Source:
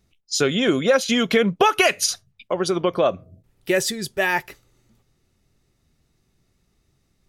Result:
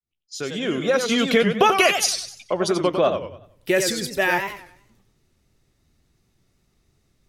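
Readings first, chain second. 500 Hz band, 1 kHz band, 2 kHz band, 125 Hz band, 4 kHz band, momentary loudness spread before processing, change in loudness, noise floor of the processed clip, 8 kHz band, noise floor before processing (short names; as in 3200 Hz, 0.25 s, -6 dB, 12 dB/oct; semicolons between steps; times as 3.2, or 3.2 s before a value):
-0.5 dB, +1.0 dB, 0.0 dB, -1.0 dB, 0.0 dB, 9 LU, -0.5 dB, -68 dBFS, -0.5 dB, -68 dBFS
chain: opening faded in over 1.33 s; warbling echo 94 ms, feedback 37%, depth 196 cents, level -7 dB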